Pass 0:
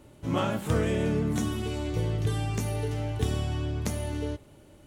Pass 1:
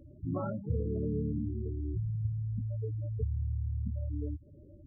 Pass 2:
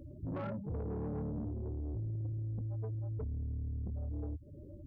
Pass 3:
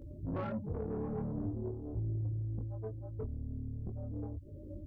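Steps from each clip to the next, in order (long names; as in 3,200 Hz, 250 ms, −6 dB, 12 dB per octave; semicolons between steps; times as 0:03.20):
parametric band 80 Hz +6.5 dB 0.57 octaves; downward compressor 1.5 to 1, threshold −40 dBFS, peak gain reduction 8 dB; gate on every frequency bin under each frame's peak −10 dB strong
in parallel at 0 dB: downward compressor, threshold −44 dBFS, peak gain reduction 16.5 dB; on the sum: soft clipping −32.5 dBFS, distortion −12 dB; level −2 dB
multi-voice chorus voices 6, 0.44 Hz, delay 21 ms, depth 2.6 ms; level +5 dB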